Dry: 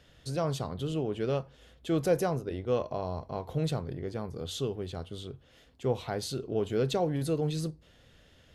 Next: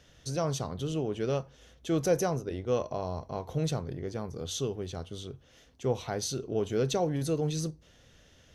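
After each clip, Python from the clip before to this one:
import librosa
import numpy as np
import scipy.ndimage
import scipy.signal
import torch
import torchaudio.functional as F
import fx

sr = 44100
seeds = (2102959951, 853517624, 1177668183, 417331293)

y = fx.peak_eq(x, sr, hz=6000.0, db=12.5, octaves=0.22)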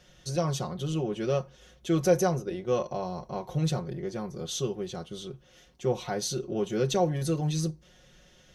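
y = x + 0.78 * np.pad(x, (int(5.5 * sr / 1000.0), 0))[:len(x)]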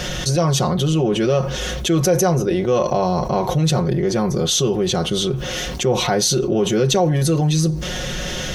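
y = fx.env_flatten(x, sr, amount_pct=70)
y = y * librosa.db_to_amplitude(4.0)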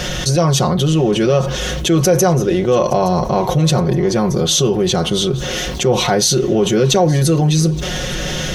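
y = fx.echo_feedback(x, sr, ms=870, feedback_pct=39, wet_db=-19.5)
y = y * librosa.db_to_amplitude(3.5)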